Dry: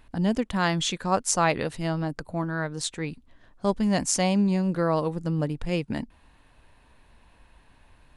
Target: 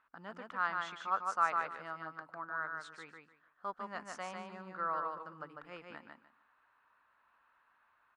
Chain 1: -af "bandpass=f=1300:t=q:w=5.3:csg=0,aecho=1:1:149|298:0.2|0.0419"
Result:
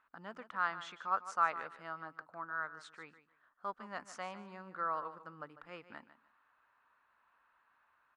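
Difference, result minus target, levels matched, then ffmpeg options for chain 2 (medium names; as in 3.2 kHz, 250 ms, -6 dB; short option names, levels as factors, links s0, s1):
echo-to-direct -10 dB
-af "bandpass=f=1300:t=q:w=5.3:csg=0,aecho=1:1:149|298|447:0.631|0.133|0.0278"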